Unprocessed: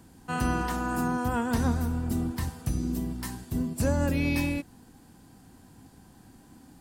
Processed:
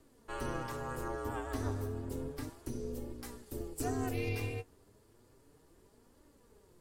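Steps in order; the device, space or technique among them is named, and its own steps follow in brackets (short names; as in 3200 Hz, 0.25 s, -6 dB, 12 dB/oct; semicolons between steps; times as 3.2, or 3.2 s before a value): alien voice (ring modulator 180 Hz; flange 0.32 Hz, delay 3.2 ms, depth 7.8 ms, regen +36%); 3.46–4.29 high shelf 5300 Hz +7 dB; gain -3.5 dB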